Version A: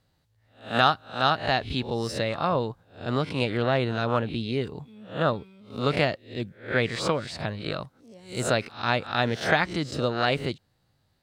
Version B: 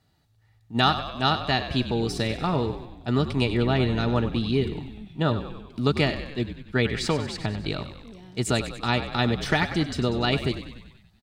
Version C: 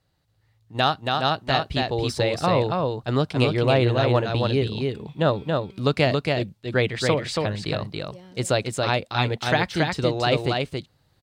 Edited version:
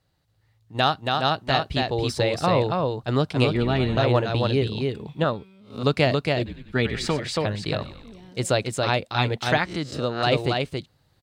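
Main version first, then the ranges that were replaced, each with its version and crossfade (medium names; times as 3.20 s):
C
3.55–3.97 s: from B
5.24–5.83 s: from A
6.46–7.19 s: from B
7.82–8.29 s: from B
9.58–10.23 s: from A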